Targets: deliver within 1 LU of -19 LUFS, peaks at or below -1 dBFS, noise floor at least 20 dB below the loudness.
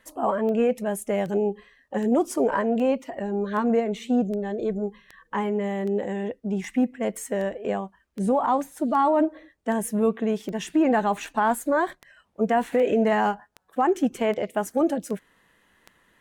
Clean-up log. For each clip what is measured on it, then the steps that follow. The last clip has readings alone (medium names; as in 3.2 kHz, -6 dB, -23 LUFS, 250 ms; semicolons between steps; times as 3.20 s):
clicks found 21; loudness -25.0 LUFS; peak level -13.5 dBFS; loudness target -19.0 LUFS
-> de-click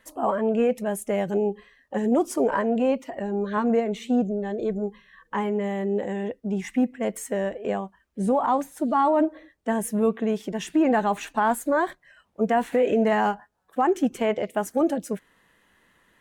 clicks found 0; loudness -25.0 LUFS; peak level -13.5 dBFS; loudness target -19.0 LUFS
-> trim +6 dB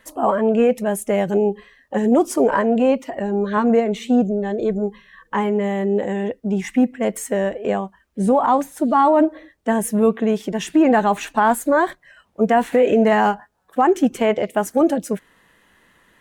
loudness -19.0 LUFS; peak level -7.5 dBFS; noise floor -60 dBFS